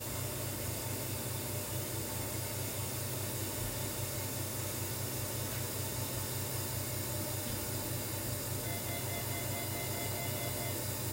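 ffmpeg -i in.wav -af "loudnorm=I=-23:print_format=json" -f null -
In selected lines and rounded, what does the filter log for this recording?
"input_i" : "-36.4",
"input_tp" : "-24.3",
"input_lra" : "0.7",
"input_thresh" : "-46.4",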